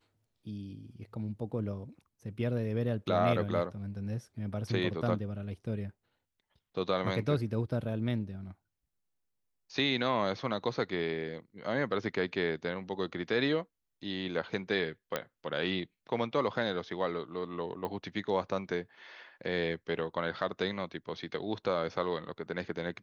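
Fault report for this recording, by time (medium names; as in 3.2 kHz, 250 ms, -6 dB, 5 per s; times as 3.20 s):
15.16 s: pop -16 dBFS
17.85 s: pop -25 dBFS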